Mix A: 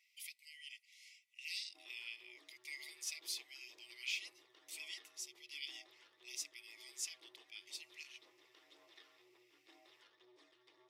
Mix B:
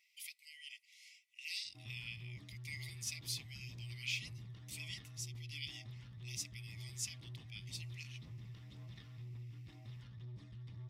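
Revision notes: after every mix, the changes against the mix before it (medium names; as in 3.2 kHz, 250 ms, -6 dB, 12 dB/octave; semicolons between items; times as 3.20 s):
master: remove elliptic high-pass 340 Hz, stop band 40 dB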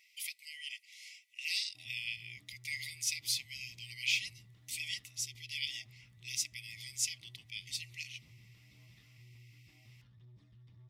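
speech +8.0 dB; background -9.0 dB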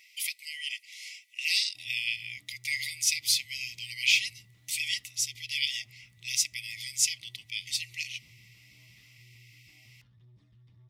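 speech +8.5 dB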